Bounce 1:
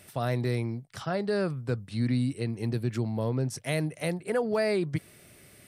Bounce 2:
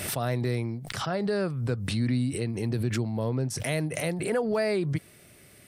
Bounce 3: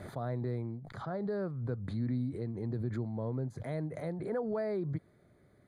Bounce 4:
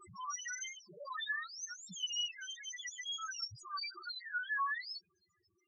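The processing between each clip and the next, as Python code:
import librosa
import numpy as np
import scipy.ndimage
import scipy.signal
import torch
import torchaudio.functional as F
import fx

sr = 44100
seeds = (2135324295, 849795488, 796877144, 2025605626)

y1 = fx.pre_swell(x, sr, db_per_s=40.0)
y2 = np.convolve(y1, np.full(16, 1.0 / 16))[:len(y1)]
y2 = F.gain(torch.from_numpy(y2), -7.0).numpy()
y3 = fx.octave_mirror(y2, sr, pivot_hz=850.0)
y3 = fx.spec_topn(y3, sr, count=2)
y3 = F.gain(torch.from_numpy(y3), 4.0).numpy()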